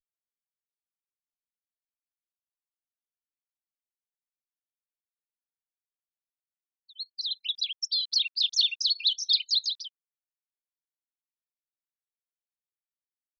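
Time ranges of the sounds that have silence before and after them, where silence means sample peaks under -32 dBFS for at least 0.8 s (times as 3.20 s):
7.00–9.86 s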